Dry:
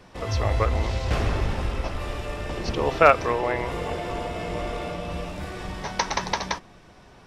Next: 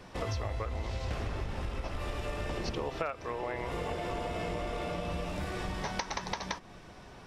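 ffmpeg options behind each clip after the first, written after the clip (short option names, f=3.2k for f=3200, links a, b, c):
-af "acompressor=threshold=-31dB:ratio=16"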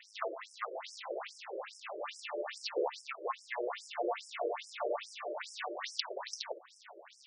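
-filter_complex "[0:a]tremolo=f=210:d=0.462,asplit=2[a][b];[b]acrusher=bits=5:dc=4:mix=0:aa=0.000001,volume=-7.5dB[c];[a][c]amix=inputs=2:normalize=0,afftfilt=real='re*between(b*sr/1024,430*pow(7200/430,0.5+0.5*sin(2*PI*2.4*pts/sr))/1.41,430*pow(7200/430,0.5+0.5*sin(2*PI*2.4*pts/sr))*1.41)':imag='im*between(b*sr/1024,430*pow(7200/430,0.5+0.5*sin(2*PI*2.4*pts/sr))/1.41,430*pow(7200/430,0.5+0.5*sin(2*PI*2.4*pts/sr))*1.41)':win_size=1024:overlap=0.75,volume=6dB"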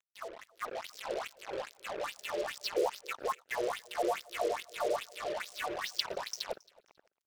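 -af "acrusher=bits=6:mix=0:aa=0.5,dynaudnorm=f=170:g=7:m=10dB,aecho=1:1:272|544:0.0631|0.0145,volume=-7dB"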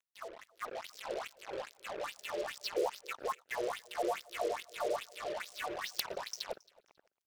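-af "aeval=exprs='(mod(5.96*val(0)+1,2)-1)/5.96':c=same,volume=-2.5dB"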